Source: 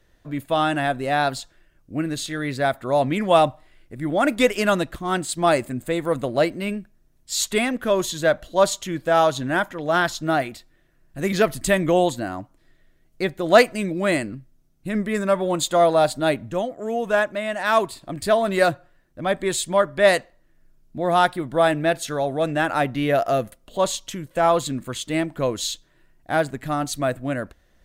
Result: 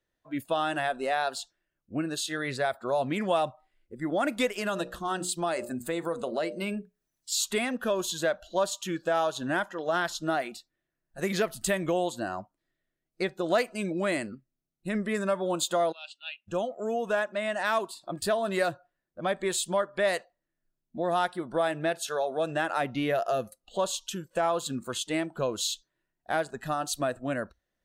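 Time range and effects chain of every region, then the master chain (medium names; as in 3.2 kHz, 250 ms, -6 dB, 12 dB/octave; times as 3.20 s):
4.57–7.33 s: hum notches 60/120/180/240/300/360/420/480/540/600 Hz + compression 2.5:1, threshold -23 dBFS + tape noise reduction on one side only encoder only
15.92–16.48 s: band-pass filter 2.8 kHz, Q 8.3 + tilt EQ +2 dB/octave
whole clip: spectral noise reduction 17 dB; bass shelf 99 Hz -11.5 dB; compression 2.5:1, threshold -25 dBFS; trim -1.5 dB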